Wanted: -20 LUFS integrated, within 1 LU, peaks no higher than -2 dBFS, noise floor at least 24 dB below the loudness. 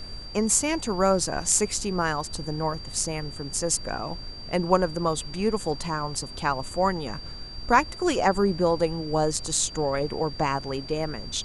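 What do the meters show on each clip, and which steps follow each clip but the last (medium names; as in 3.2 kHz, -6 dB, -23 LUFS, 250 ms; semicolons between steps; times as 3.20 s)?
steady tone 4.7 kHz; tone level -40 dBFS; noise floor -39 dBFS; noise floor target -50 dBFS; loudness -26.0 LUFS; peak level -5.5 dBFS; loudness target -20.0 LUFS
-> band-stop 4.7 kHz, Q 30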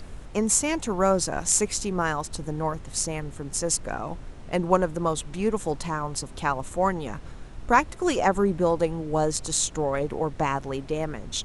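steady tone not found; noise floor -41 dBFS; noise floor target -50 dBFS
-> noise print and reduce 9 dB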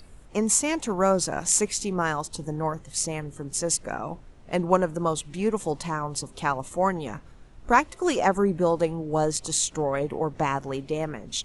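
noise floor -48 dBFS; noise floor target -50 dBFS
-> noise print and reduce 6 dB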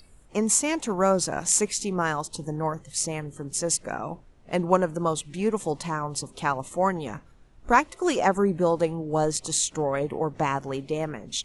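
noise floor -54 dBFS; loudness -26.0 LUFS; peak level -5.5 dBFS; loudness target -20.0 LUFS
-> trim +6 dB; peak limiter -2 dBFS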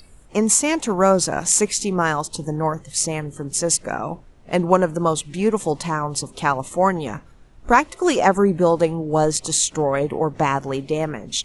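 loudness -20.0 LUFS; peak level -2.0 dBFS; noise floor -48 dBFS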